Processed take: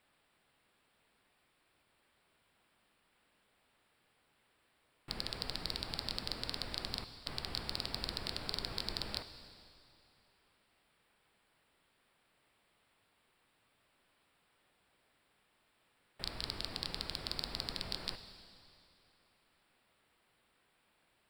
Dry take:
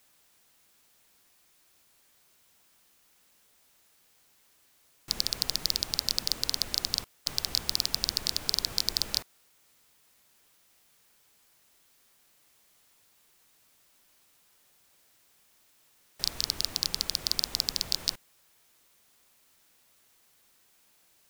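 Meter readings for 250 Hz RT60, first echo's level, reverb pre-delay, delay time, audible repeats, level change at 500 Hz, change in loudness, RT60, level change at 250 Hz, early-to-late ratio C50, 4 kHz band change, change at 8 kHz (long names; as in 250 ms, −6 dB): 2.7 s, no echo audible, 7 ms, no echo audible, no echo audible, −1.5 dB, −11.0 dB, 2.7 s, −1.5 dB, 10.5 dB, −10.5 dB, −20.0 dB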